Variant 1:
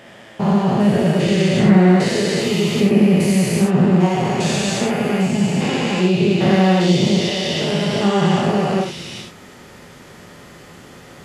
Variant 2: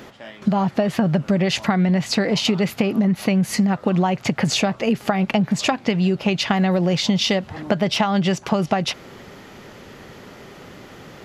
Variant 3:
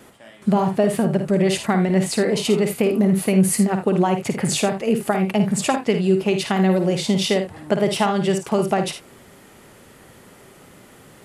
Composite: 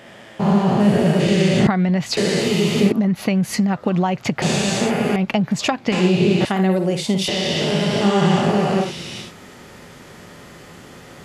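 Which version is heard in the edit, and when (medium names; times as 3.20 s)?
1
1.67–2.17 s: from 2
2.92–4.42 s: from 2
5.16–5.92 s: from 2
6.45–7.28 s: from 3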